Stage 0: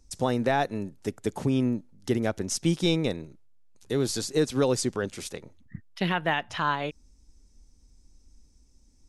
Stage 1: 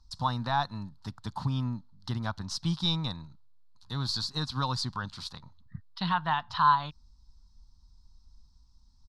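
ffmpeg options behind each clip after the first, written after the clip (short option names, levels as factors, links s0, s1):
-af "firequalizer=gain_entry='entry(140,0);entry(410,-25);entry(980,8);entry(2200,-15);entry(4200,8);entry(6300,-12);entry(9000,-16)':delay=0.05:min_phase=1"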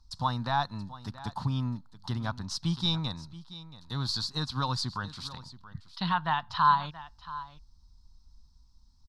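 -af "aecho=1:1:678:0.15"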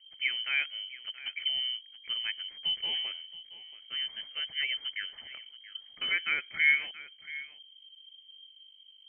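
-af "aeval=exprs='val(0)+0.00178*(sin(2*PI*50*n/s)+sin(2*PI*2*50*n/s)/2+sin(2*PI*3*50*n/s)/3+sin(2*PI*4*50*n/s)/4+sin(2*PI*5*50*n/s)/5)':c=same,lowpass=f=2700:t=q:w=0.5098,lowpass=f=2700:t=q:w=0.6013,lowpass=f=2700:t=q:w=0.9,lowpass=f=2700:t=q:w=2.563,afreqshift=-3200,volume=0.794"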